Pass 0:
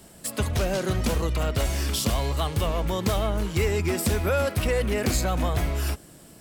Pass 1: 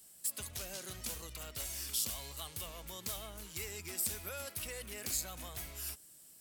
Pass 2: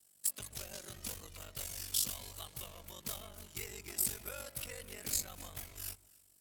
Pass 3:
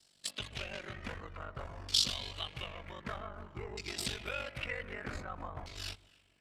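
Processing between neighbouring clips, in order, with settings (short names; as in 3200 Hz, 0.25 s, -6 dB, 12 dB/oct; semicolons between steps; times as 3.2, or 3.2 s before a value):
pre-emphasis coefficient 0.9; gain -5 dB
ring modulator 24 Hz; echo with dull and thin repeats by turns 0.137 s, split 1000 Hz, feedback 50%, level -10.5 dB; upward expander 1.5:1, over -59 dBFS; gain +6 dB
LFO low-pass saw down 0.53 Hz 930–4700 Hz; gain +5.5 dB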